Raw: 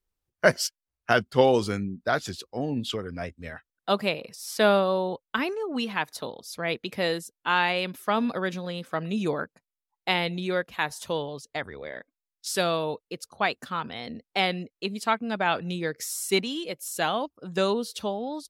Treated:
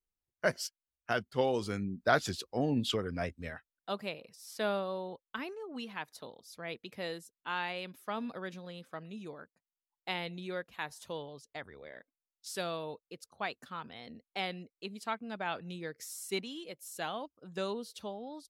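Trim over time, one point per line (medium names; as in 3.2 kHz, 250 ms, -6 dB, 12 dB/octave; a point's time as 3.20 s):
1.54 s -10.5 dB
2.05 s -1.5 dB
3.40 s -1.5 dB
3.91 s -12.5 dB
8.84 s -12.5 dB
9.36 s -19 dB
10.09 s -11.5 dB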